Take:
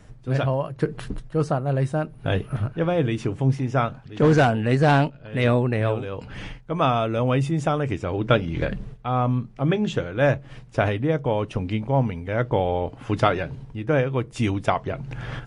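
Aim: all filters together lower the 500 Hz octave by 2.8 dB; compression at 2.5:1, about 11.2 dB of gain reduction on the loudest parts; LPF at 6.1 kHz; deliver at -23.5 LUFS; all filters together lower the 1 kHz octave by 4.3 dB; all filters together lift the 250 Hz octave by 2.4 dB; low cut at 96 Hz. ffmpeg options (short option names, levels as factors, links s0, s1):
-af "highpass=96,lowpass=6100,equalizer=f=250:t=o:g=4.5,equalizer=f=500:t=o:g=-3,equalizer=f=1000:t=o:g=-5.5,acompressor=threshold=0.0282:ratio=2.5,volume=2.99"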